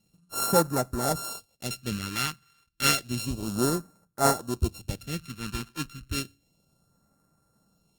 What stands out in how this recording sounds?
a buzz of ramps at a fixed pitch in blocks of 32 samples
phaser sweep stages 2, 0.31 Hz, lowest notch 580–2,800 Hz
Opus

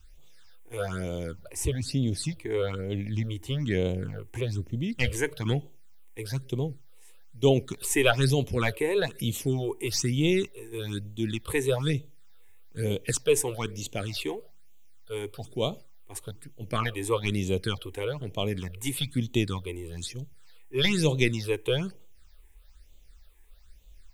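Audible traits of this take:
a quantiser's noise floor 12 bits, dither triangular
phaser sweep stages 8, 1.1 Hz, lowest notch 170–1,600 Hz

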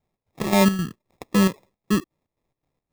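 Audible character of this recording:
phaser sweep stages 4, 2.1 Hz, lowest notch 550–1,600 Hz
aliases and images of a low sample rate 1,500 Hz, jitter 0%
chopped level 3.8 Hz, depth 65%, duty 60%

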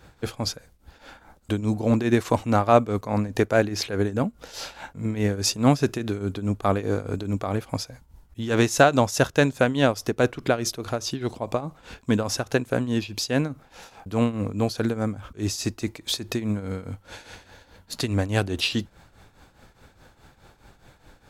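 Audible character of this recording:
tremolo triangle 4.8 Hz, depth 80%

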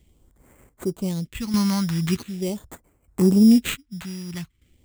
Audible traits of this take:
aliases and images of a low sample rate 5,300 Hz, jitter 0%
chopped level 0.65 Hz, depth 65%, duty 45%
phaser sweep stages 2, 0.42 Hz, lowest notch 420–3,200 Hz

